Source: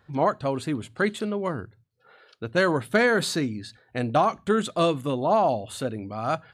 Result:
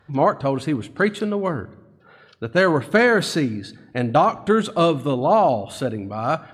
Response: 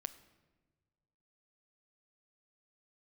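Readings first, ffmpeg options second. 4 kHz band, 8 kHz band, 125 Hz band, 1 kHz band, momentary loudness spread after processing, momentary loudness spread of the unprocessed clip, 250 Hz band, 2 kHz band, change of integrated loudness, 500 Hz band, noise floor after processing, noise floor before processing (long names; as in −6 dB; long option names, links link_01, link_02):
+3.0 dB, +0.5 dB, +5.5 dB, +5.0 dB, 10 LU, 10 LU, +5.0 dB, +4.5 dB, +5.0 dB, +5.0 dB, −52 dBFS, −64 dBFS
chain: -filter_complex "[0:a]lowpass=frequency=4000:poles=1,asplit=2[link_01][link_02];[1:a]atrim=start_sample=2205,highshelf=frequency=8400:gain=8.5[link_03];[link_02][link_03]afir=irnorm=-1:irlink=0,volume=1dB[link_04];[link_01][link_04]amix=inputs=2:normalize=0" -ar 44100 -c:a aac -b:a 96k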